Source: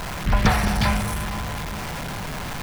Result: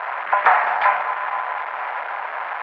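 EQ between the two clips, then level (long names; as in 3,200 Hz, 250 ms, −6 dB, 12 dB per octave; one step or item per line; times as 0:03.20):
high-pass filter 680 Hz 24 dB per octave
low-pass filter 2,000 Hz 24 dB per octave
dynamic equaliser 930 Hz, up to +3 dB, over −37 dBFS, Q 2.4
+8.5 dB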